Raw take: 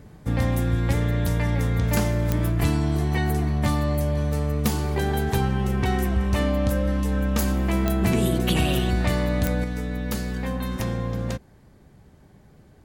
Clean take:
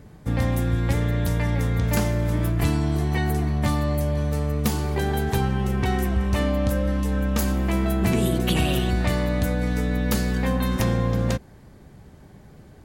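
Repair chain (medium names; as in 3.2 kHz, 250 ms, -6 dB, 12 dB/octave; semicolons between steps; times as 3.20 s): de-click; trim 0 dB, from 9.64 s +5 dB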